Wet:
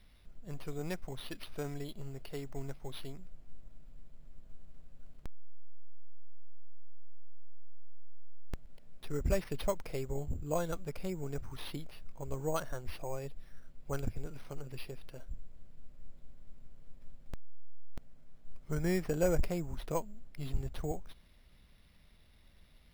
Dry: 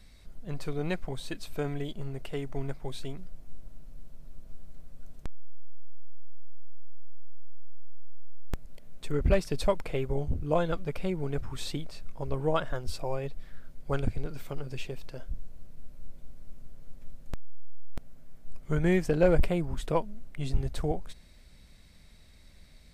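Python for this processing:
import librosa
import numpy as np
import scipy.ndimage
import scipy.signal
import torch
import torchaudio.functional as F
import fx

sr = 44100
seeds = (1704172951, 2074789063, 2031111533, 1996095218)

y = fx.peak_eq(x, sr, hz=4600.0, db=5.0, octaves=0.77, at=(1.02, 3.07))
y = np.repeat(y[::6], 6)[:len(y)]
y = y * 10.0 ** (-7.0 / 20.0)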